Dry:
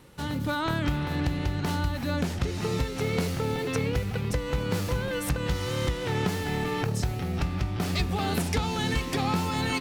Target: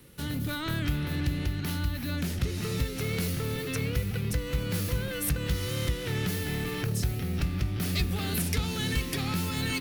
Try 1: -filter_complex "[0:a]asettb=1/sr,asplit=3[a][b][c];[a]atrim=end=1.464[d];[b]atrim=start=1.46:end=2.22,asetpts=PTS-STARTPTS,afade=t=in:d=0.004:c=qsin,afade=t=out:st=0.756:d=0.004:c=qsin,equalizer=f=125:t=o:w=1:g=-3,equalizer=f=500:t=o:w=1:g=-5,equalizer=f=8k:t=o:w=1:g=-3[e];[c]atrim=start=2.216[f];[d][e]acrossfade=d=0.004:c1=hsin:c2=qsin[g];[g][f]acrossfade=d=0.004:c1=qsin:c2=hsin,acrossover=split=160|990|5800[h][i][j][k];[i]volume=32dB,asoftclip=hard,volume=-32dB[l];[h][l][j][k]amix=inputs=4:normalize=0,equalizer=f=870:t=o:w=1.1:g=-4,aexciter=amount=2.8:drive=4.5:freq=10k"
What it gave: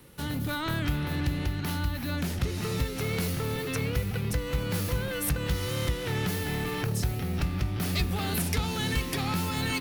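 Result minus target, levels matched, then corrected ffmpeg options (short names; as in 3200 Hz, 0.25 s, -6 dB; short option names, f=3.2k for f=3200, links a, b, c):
1000 Hz band +4.5 dB
-filter_complex "[0:a]asettb=1/sr,asplit=3[a][b][c];[a]atrim=end=1.464[d];[b]atrim=start=1.46:end=2.22,asetpts=PTS-STARTPTS,afade=t=in:d=0.004:c=qsin,afade=t=out:st=0.756:d=0.004:c=qsin,equalizer=f=125:t=o:w=1:g=-3,equalizer=f=500:t=o:w=1:g=-5,equalizer=f=8k:t=o:w=1:g=-3[e];[c]atrim=start=2.216[f];[d][e]acrossfade=d=0.004:c1=hsin:c2=qsin[g];[g][f]acrossfade=d=0.004:c1=qsin:c2=hsin,acrossover=split=160|990|5800[h][i][j][k];[i]volume=32dB,asoftclip=hard,volume=-32dB[l];[h][l][j][k]amix=inputs=4:normalize=0,equalizer=f=870:t=o:w=1.1:g=-10.5,aexciter=amount=2.8:drive=4.5:freq=10k"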